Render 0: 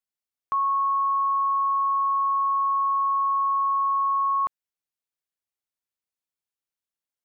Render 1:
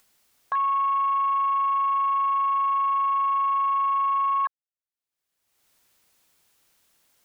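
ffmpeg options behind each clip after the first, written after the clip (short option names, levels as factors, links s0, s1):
-af "afwtdn=0.0251,acompressor=mode=upward:threshold=0.0224:ratio=2.5"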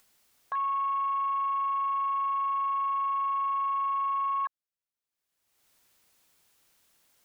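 -af "alimiter=limit=0.0668:level=0:latency=1,volume=0.841"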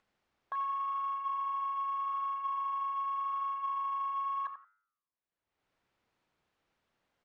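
-af "aecho=1:1:87|174:0.316|0.0538,flanger=delay=9.5:depth=4.7:regen=-90:speed=0.84:shape=sinusoidal,adynamicsmooth=sensitivity=2:basefreq=2400,volume=1.12"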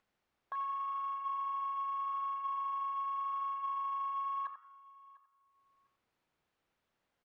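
-af "aecho=1:1:700|1400:0.0841|0.0168,volume=0.708"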